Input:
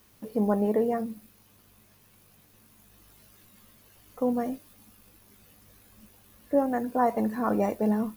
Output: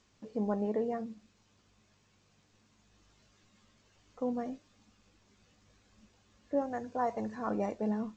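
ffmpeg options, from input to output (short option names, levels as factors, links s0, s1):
-filter_complex "[0:a]asettb=1/sr,asplit=3[s0][s1][s2];[s0]atrim=end=6.614[s3];[s1]atrim=start=6.61:end=7.47,asetpts=PTS-STARTPTS,afade=t=in:d=0.004:c=qsin,afade=t=out:st=0.856:d=0.004:c=qsin,equalizer=f=100:t=o:w=0.67:g=7,equalizer=f=250:t=o:w=0.67:g=-5,equalizer=f=6300:t=o:w=0.67:g=5[s4];[s2]atrim=start=7.466[s5];[s3][s4]acrossfade=d=0.004:c1=hsin:c2=qsin[s6];[s6][s5]acrossfade=d=0.004:c1=qsin:c2=hsin,volume=0.422" -ar 16000 -c:a g722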